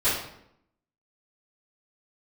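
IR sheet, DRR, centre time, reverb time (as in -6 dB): -16.5 dB, 52 ms, 0.75 s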